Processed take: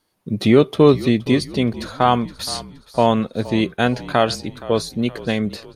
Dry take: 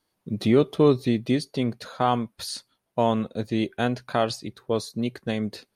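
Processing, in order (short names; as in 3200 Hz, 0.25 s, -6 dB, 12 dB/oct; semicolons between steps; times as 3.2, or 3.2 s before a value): frequency-shifting echo 0.47 s, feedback 47%, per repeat -41 Hz, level -17 dB; dynamic EQ 2200 Hz, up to +3 dB, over -39 dBFS, Q 0.75; gain +6 dB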